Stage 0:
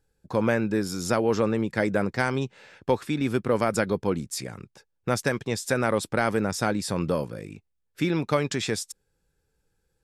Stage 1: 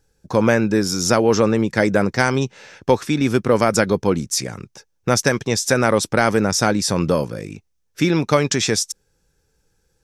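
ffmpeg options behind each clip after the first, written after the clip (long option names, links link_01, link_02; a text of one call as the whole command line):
ffmpeg -i in.wav -af "equalizer=frequency=5900:width_type=o:width=0.39:gain=9.5,volume=7.5dB" out.wav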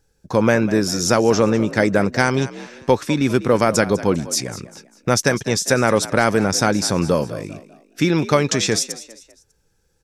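ffmpeg -i in.wav -filter_complex "[0:a]asplit=4[link_01][link_02][link_03][link_04];[link_02]adelay=199,afreqshift=54,volume=-16dB[link_05];[link_03]adelay=398,afreqshift=108,volume=-24.6dB[link_06];[link_04]adelay=597,afreqshift=162,volume=-33.3dB[link_07];[link_01][link_05][link_06][link_07]amix=inputs=4:normalize=0" out.wav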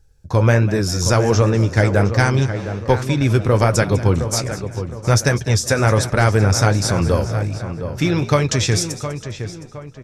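ffmpeg -i in.wav -filter_complex "[0:a]lowshelf=frequency=140:width_type=q:width=1.5:gain=11.5,asplit=2[link_01][link_02];[link_02]adelay=714,lowpass=frequency=2400:poles=1,volume=-9.5dB,asplit=2[link_03][link_04];[link_04]adelay=714,lowpass=frequency=2400:poles=1,volume=0.4,asplit=2[link_05][link_06];[link_06]adelay=714,lowpass=frequency=2400:poles=1,volume=0.4,asplit=2[link_07][link_08];[link_08]adelay=714,lowpass=frequency=2400:poles=1,volume=0.4[link_09];[link_01][link_03][link_05][link_07][link_09]amix=inputs=5:normalize=0,flanger=delay=4.5:depth=7.7:regen=-61:speed=1.3:shape=triangular,volume=3.5dB" out.wav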